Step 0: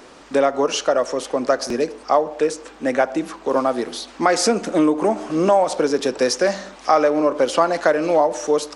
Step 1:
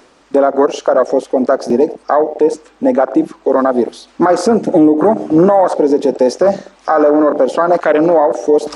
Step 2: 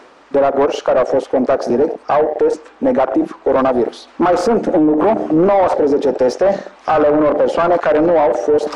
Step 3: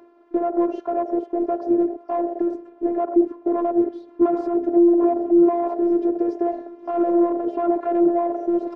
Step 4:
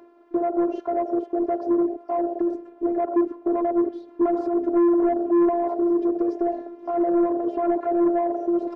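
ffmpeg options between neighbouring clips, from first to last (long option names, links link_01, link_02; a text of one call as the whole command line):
ffmpeg -i in.wav -af "afwtdn=0.1,areverse,acompressor=mode=upward:threshold=-29dB:ratio=2.5,areverse,alimiter=level_in=12.5dB:limit=-1dB:release=50:level=0:latency=1,volume=-1dB" out.wav
ffmpeg -i in.wav -filter_complex "[0:a]asoftclip=type=tanh:threshold=-5.5dB,asplit=2[link_01][link_02];[link_02]highpass=frequency=720:poles=1,volume=14dB,asoftclip=type=tanh:threshold=-6dB[link_03];[link_01][link_03]amix=inputs=2:normalize=0,lowpass=frequency=1400:poles=1,volume=-6dB" out.wav
ffmpeg -i in.wav -af "bandpass=frequency=350:width_type=q:width=1.4:csg=0,aecho=1:1:775|1550|2325|3100:0.0841|0.0446|0.0236|0.0125,afftfilt=real='hypot(re,im)*cos(PI*b)':imag='0':win_size=512:overlap=0.75" out.wav
ffmpeg -i in.wav -af "asoftclip=type=tanh:threshold=-14dB" out.wav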